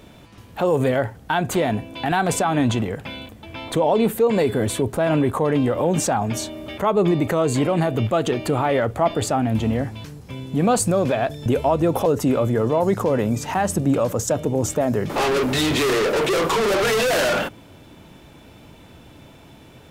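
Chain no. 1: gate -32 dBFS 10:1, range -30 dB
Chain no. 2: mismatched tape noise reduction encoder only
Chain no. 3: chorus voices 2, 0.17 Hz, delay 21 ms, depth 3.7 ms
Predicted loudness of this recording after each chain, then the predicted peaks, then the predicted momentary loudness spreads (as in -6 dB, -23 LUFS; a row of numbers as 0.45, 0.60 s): -21.0, -21.0, -24.0 LUFS; -9.0, -7.5, -8.0 dBFS; 6, 7, 8 LU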